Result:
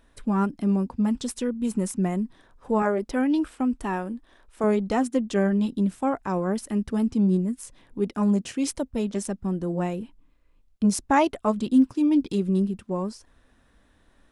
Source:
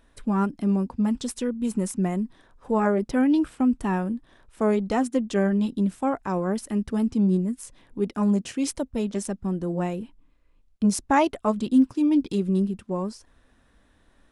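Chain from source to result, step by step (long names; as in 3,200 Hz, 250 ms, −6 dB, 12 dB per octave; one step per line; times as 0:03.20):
0:02.82–0:04.64: parametric band 130 Hz −13 dB 1.1 octaves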